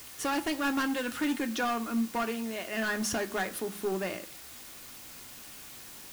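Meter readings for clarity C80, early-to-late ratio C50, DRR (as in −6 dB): 23.0 dB, 18.5 dB, 7.0 dB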